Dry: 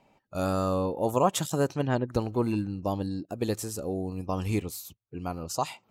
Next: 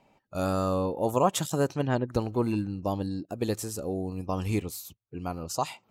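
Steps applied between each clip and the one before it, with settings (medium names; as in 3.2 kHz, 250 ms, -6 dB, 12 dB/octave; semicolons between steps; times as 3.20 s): no audible change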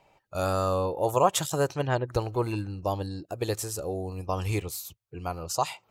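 peaking EQ 230 Hz -15 dB 0.69 oct; trim +3 dB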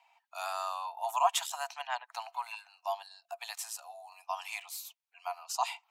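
rippled Chebyshev high-pass 670 Hz, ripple 6 dB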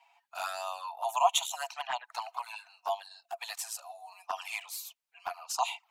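touch-sensitive flanger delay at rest 7.6 ms, full sweep at -31 dBFS; trim +5 dB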